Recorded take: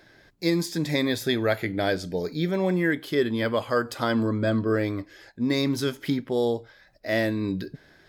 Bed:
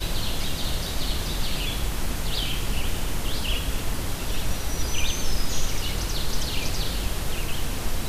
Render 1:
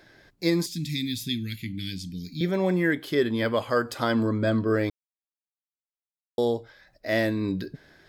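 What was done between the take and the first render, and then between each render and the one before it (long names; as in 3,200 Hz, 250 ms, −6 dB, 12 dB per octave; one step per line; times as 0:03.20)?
0:00.66–0:02.41: Chebyshev band-stop filter 240–2,600 Hz, order 3
0:04.90–0:06.38: silence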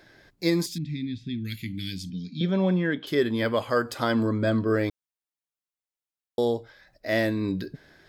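0:00.78–0:01.45: head-to-tape spacing loss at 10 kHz 37 dB
0:02.10–0:03.07: loudspeaker in its box 130–5,200 Hz, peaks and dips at 210 Hz +9 dB, 340 Hz −5 dB, 750 Hz −3 dB, 2,000 Hz −9 dB, 3,200 Hz +6 dB, 4,500 Hz −7 dB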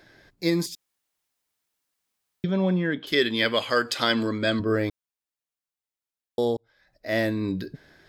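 0:00.75–0:02.44: fill with room tone
0:03.12–0:04.60: meter weighting curve D
0:06.57–0:07.19: fade in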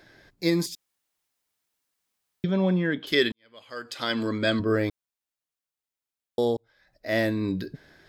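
0:03.32–0:04.35: fade in quadratic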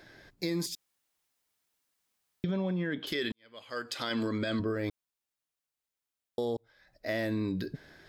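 brickwall limiter −20 dBFS, peak gain reduction 11 dB
downward compressor, threshold −28 dBFS, peak gain reduction 5 dB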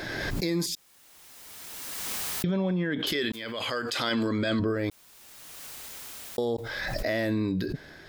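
in parallel at +2 dB: brickwall limiter −31 dBFS, peak gain reduction 10.5 dB
on the sum: background raised ahead of every attack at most 22 dB per second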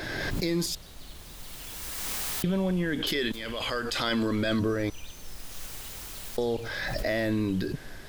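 mix in bed −19 dB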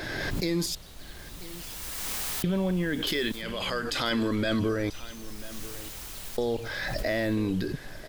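single-tap delay 990 ms −17.5 dB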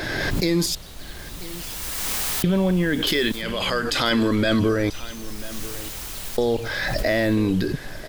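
level +7 dB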